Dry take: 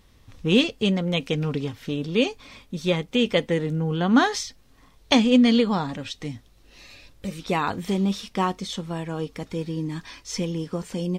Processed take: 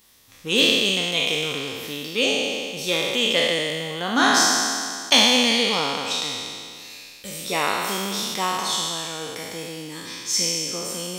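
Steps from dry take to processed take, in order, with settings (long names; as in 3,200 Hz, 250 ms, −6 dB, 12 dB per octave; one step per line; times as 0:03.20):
peak hold with a decay on every bin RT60 2.20 s
RIAA equalisation recording
level −2.5 dB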